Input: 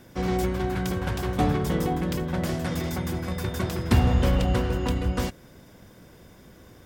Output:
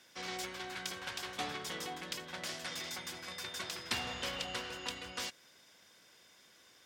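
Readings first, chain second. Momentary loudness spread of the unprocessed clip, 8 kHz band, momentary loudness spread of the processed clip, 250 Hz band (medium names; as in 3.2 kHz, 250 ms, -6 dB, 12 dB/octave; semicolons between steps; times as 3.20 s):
8 LU, -2.5 dB, 5 LU, -23.0 dB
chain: band-pass filter 4.4 kHz, Q 0.78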